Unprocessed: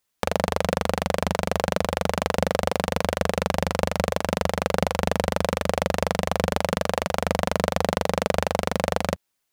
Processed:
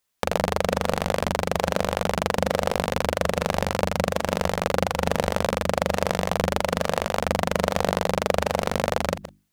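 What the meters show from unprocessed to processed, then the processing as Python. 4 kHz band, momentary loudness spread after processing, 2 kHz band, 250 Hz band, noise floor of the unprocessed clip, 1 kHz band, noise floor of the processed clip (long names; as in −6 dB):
+0.5 dB, 1 LU, +0.5 dB, −0.5 dB, −77 dBFS, +0.5 dB, −47 dBFS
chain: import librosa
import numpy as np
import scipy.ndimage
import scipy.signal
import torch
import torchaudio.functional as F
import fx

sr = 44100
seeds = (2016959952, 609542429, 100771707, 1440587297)

y = fx.reverse_delay(x, sr, ms=101, wet_db=-11.0)
y = fx.hum_notches(y, sr, base_hz=50, count=7)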